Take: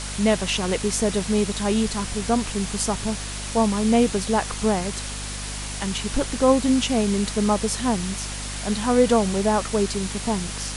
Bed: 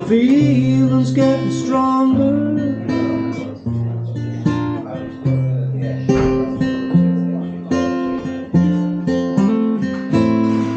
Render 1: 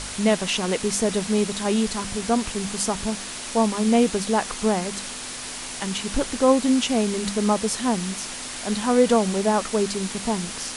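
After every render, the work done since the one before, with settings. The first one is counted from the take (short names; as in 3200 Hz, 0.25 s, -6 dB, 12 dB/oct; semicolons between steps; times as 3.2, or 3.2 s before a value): de-hum 50 Hz, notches 4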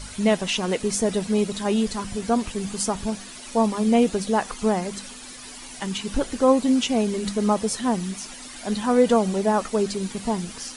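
denoiser 11 dB, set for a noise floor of -34 dBFS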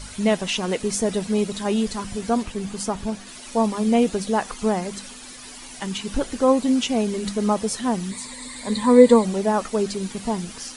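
2.43–3.27 high shelf 3800 Hz -5.5 dB; 8.11–9.25 ripple EQ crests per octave 0.99, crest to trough 13 dB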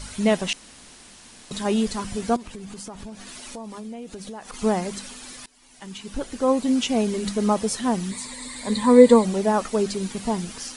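0.53–1.51 room tone; 2.36–4.54 compressor, threshold -34 dBFS; 5.46–6.97 fade in, from -23.5 dB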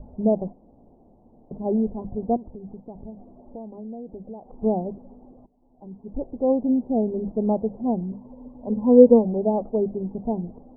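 steep low-pass 790 Hz 48 dB/oct; notches 50/100/150/200 Hz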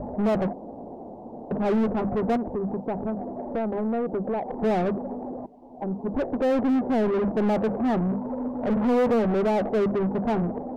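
overloaded stage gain 17.5 dB; overdrive pedal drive 30 dB, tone 1000 Hz, clips at -17 dBFS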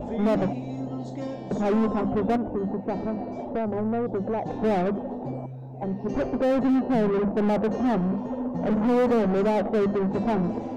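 add bed -20 dB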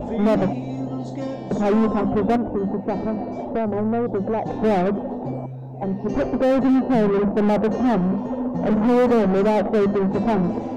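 gain +4.5 dB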